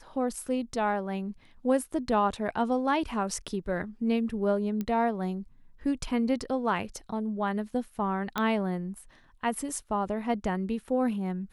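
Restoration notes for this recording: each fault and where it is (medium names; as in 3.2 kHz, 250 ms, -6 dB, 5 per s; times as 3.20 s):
4.81 s: pop -20 dBFS
8.38 s: pop -14 dBFS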